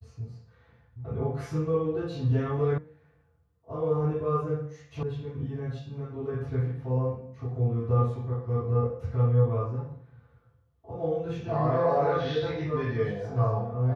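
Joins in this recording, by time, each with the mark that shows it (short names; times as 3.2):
2.78 sound cut off
5.03 sound cut off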